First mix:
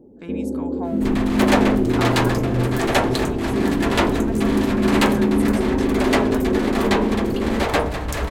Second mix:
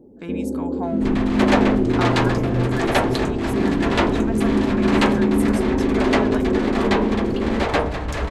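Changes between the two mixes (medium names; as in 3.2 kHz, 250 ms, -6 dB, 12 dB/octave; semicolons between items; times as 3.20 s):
speech +3.0 dB; second sound: add distance through air 66 m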